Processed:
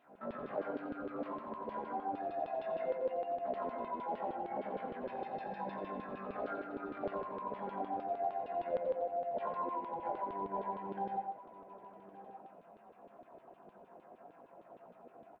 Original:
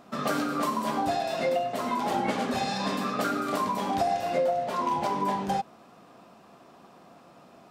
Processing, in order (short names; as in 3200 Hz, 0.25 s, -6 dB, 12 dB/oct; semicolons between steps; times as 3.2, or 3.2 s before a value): tilt -1.5 dB/oct; notch 1200 Hz, Q 6.2; compressor 8:1, threshold -31 dBFS, peak gain reduction 11 dB; tempo 0.5×; LFO band-pass saw down 6.5 Hz 410–3500 Hz; tape spacing loss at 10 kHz 42 dB; echo 1.168 s -15.5 dB; on a send at -6 dB: reverb RT60 0.45 s, pre-delay 78 ms; on the sum: gain +5 dB; Nellymoser 88 kbps 44100 Hz